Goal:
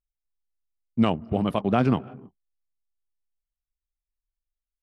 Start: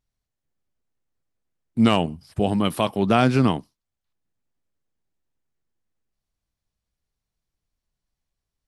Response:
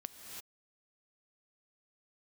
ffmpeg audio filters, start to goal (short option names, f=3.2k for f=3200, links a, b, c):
-filter_complex "[0:a]atempo=1.8,asplit=2[a][b];[1:a]atrim=start_sample=2205[c];[b][c]afir=irnorm=-1:irlink=0,volume=-11.5dB[d];[a][d]amix=inputs=2:normalize=0,anlmdn=0.631,lowpass=f=1.9k:p=1,volume=-3.5dB"